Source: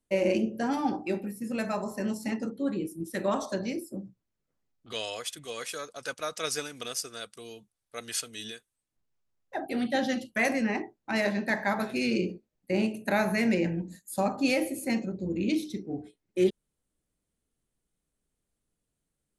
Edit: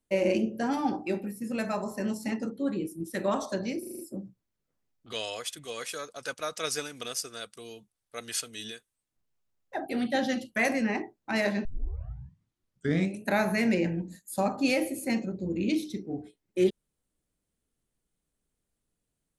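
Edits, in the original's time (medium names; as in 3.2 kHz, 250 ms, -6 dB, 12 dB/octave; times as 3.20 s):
3.79 s: stutter 0.04 s, 6 plays
11.45 s: tape start 1.60 s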